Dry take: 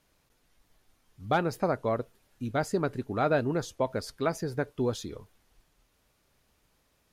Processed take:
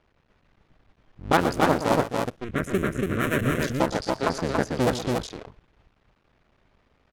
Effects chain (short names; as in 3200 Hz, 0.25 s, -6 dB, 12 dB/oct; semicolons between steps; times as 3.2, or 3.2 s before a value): cycle switcher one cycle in 2, muted; low-pass opened by the level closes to 2600 Hz, open at -25 dBFS; 2.44–3.6 fixed phaser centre 2000 Hz, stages 4; on a send: loudspeakers at several distances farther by 41 m -11 dB, 97 m -3 dB; on the sum: gain +7.5 dB